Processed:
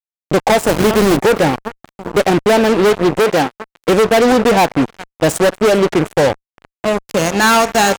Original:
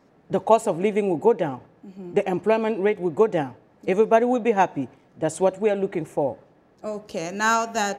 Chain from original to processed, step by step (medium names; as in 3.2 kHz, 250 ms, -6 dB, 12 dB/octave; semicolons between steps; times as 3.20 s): 0.67–1.17 s: send-on-delta sampling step -23.5 dBFS; feedback delay 398 ms, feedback 47%, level -21 dB; fuzz box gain 29 dB, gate -33 dBFS; 3.19–3.89 s: bass shelf 140 Hz -11.5 dB; trim +5 dB